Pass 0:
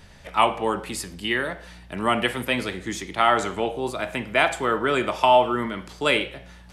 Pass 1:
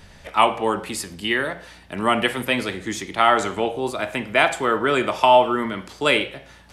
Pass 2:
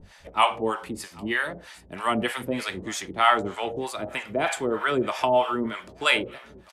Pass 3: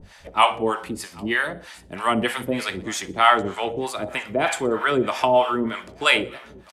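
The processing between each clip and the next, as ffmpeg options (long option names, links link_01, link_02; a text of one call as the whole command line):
ffmpeg -i in.wav -af "bandreject=frequency=60:width_type=h:width=6,bandreject=frequency=120:width_type=h:width=6,bandreject=frequency=180:width_type=h:width=6,volume=2.5dB" out.wav
ffmpeg -i in.wav -filter_complex "[0:a]aecho=1:1:793|1586|2379:0.0841|0.037|0.0163,acrossover=split=640[link_01][link_02];[link_01]aeval=exprs='val(0)*(1-1/2+1/2*cos(2*PI*3.2*n/s))':channel_layout=same[link_03];[link_02]aeval=exprs='val(0)*(1-1/2-1/2*cos(2*PI*3.2*n/s))':channel_layout=same[link_04];[link_03][link_04]amix=inputs=2:normalize=0" out.wav
ffmpeg -i in.wav -af "aecho=1:1:61|122|183:0.0794|0.0381|0.0183,volume=3.5dB" out.wav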